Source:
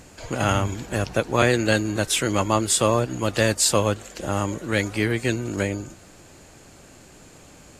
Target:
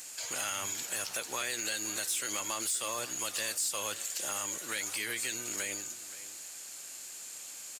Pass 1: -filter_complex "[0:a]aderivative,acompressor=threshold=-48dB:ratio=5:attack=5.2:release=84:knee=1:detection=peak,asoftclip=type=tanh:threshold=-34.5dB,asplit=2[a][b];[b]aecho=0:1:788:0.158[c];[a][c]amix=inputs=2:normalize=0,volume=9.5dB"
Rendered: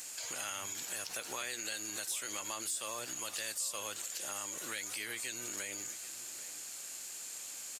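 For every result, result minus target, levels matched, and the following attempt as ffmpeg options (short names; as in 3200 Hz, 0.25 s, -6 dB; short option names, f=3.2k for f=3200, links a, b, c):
echo 0.263 s late; compressor: peak gain reduction +6 dB
-filter_complex "[0:a]aderivative,acompressor=threshold=-48dB:ratio=5:attack=5.2:release=84:knee=1:detection=peak,asoftclip=type=tanh:threshold=-34.5dB,asplit=2[a][b];[b]aecho=0:1:525:0.158[c];[a][c]amix=inputs=2:normalize=0,volume=9.5dB"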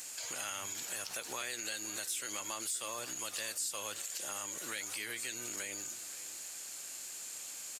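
compressor: peak gain reduction +6 dB
-filter_complex "[0:a]aderivative,acompressor=threshold=-40.5dB:ratio=5:attack=5.2:release=84:knee=1:detection=peak,asoftclip=type=tanh:threshold=-34.5dB,asplit=2[a][b];[b]aecho=0:1:525:0.158[c];[a][c]amix=inputs=2:normalize=0,volume=9.5dB"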